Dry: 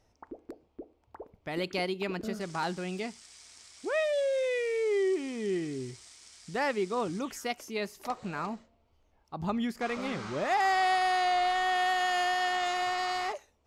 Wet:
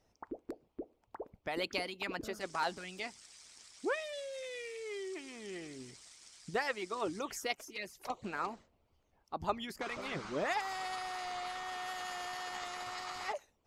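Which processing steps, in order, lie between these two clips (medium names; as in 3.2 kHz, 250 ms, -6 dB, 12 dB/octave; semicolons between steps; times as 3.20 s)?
harmonic-percussive split harmonic -16 dB; 7.55–8.24 s: touch-sensitive flanger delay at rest 7.9 ms, full sweep at -35.5 dBFS; trim +1 dB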